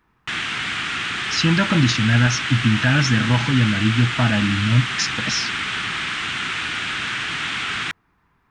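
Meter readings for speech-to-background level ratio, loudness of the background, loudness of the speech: 4.0 dB, -23.5 LUFS, -19.5 LUFS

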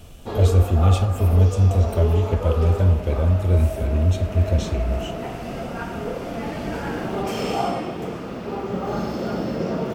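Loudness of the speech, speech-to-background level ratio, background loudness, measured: -20.0 LUFS, 8.5 dB, -28.5 LUFS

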